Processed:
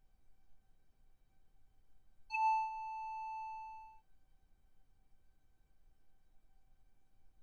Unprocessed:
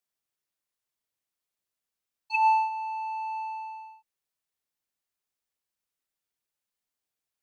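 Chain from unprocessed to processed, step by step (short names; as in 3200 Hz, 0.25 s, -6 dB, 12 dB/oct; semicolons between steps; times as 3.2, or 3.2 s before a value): added noise brown -62 dBFS; resonator 770 Hz, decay 0.17 s, harmonics all, mix 90%; gain +6 dB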